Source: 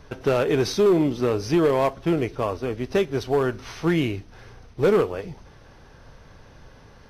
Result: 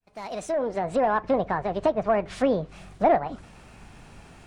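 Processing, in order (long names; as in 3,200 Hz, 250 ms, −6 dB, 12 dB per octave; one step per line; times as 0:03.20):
fade in at the beginning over 2.19 s
treble cut that deepens with the level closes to 940 Hz, closed at −22 dBFS
change of speed 1.59×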